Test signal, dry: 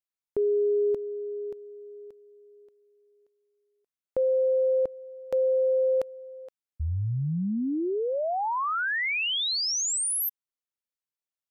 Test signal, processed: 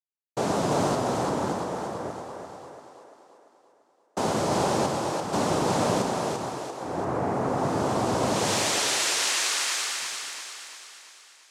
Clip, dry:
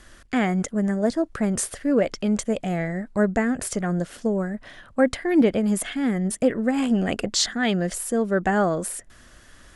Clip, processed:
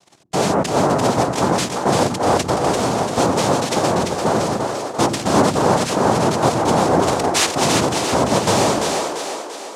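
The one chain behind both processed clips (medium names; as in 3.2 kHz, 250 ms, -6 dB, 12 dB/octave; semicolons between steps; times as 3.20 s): waveshaping leveller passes 3; level-controlled noise filter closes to 1.6 kHz, open at -15.5 dBFS; noise-vocoded speech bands 2; on a send: two-band feedback delay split 320 Hz, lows 103 ms, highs 342 ms, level -4 dB; on the sum: trim -4 dB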